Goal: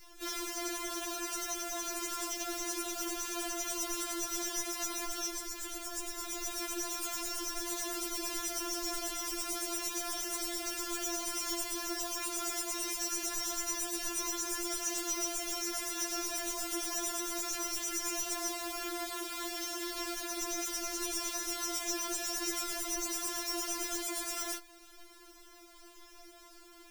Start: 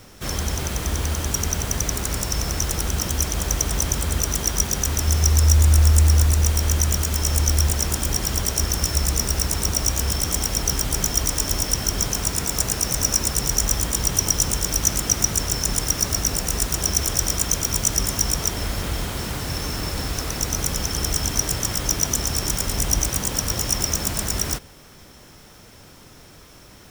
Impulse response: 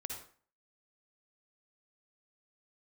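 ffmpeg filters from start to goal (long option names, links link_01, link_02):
-af "alimiter=limit=-14.5dB:level=0:latency=1:release=11,afftfilt=real='re*4*eq(mod(b,16),0)':imag='im*4*eq(mod(b,16),0)':win_size=2048:overlap=0.75,volume=-5.5dB"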